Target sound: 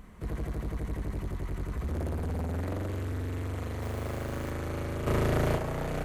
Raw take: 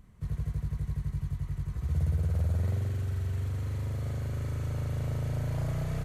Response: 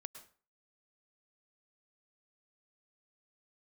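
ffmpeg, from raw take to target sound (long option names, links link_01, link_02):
-filter_complex "[0:a]lowshelf=frequency=89:gain=-7,asoftclip=type=tanh:threshold=-38dB,equalizer=frequency=120:width=1.6:gain=-13,asettb=1/sr,asplit=3[link_01][link_02][link_03];[link_01]atrim=end=3.824[link_04];[link_02]atrim=start=3.82:end=4.51,asetpts=PTS-STARTPTS,afade=type=in:duration=0.004:curve=qsin,afade=type=out:start_time=0.686:duration=0.004:curve=qsin,acrusher=bits=3:mode=log:mix=0:aa=0.000001[link_05];[link_03]atrim=start=4.506[link_06];[link_04][link_05]acrossfade=duration=0.004:curve1=hsin:curve2=qsin[link_07];[link_07][link_06]acrossfade=duration=0.004:curve1=qsin:curve2=hsin,asplit=3[link_08][link_09][link_10];[link_08]afade=type=out:start_time=5.06:duration=0.02[link_11];[link_09]acontrast=86,afade=type=in:start_time=5.06:duration=0.02,afade=type=out:start_time=5.56:duration=0.02[link_12];[link_10]afade=type=in:start_time=5.56:duration=0.02[link_13];[link_11][link_12][link_13]amix=inputs=3:normalize=0,asplit=2[link_14][link_15];[1:a]atrim=start_sample=2205,lowpass=3300[link_16];[link_15][link_16]afir=irnorm=-1:irlink=0,volume=2dB[link_17];[link_14][link_17]amix=inputs=2:normalize=0,volume=8.5dB"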